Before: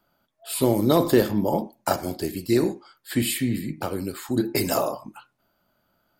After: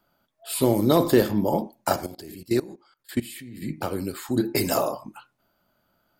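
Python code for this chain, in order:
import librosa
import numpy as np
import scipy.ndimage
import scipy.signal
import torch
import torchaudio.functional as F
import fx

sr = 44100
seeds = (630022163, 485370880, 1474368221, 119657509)

y = fx.level_steps(x, sr, step_db=20, at=(2.06, 3.62))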